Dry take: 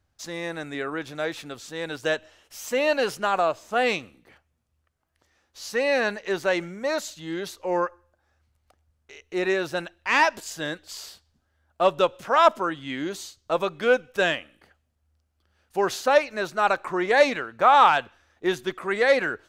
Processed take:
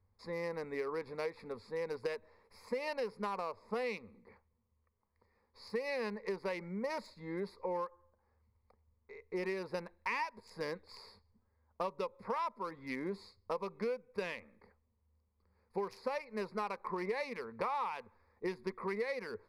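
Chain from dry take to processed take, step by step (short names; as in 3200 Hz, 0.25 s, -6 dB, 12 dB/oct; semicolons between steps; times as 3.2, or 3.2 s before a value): Wiener smoothing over 15 samples; ripple EQ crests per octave 0.88, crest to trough 14 dB; compressor 12:1, threshold -29 dBFS, peak gain reduction 19.5 dB; gain -5 dB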